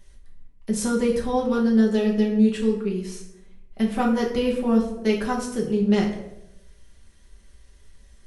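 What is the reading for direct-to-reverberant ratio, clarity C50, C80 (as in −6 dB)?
−2.5 dB, 7.0 dB, 10.0 dB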